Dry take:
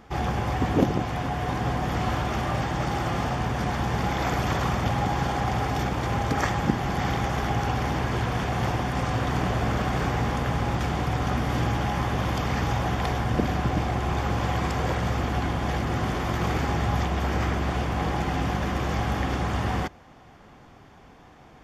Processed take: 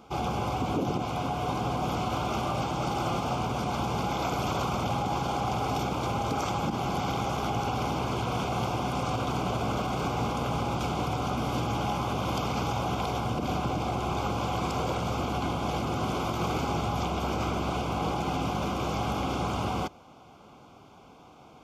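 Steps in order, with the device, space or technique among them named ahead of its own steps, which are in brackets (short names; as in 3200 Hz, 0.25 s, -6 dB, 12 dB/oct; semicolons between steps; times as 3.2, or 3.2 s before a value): PA system with an anti-feedback notch (HPF 160 Hz 6 dB/oct; Butterworth band-stop 1800 Hz, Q 2.4; limiter -20 dBFS, peak gain reduction 10.5 dB)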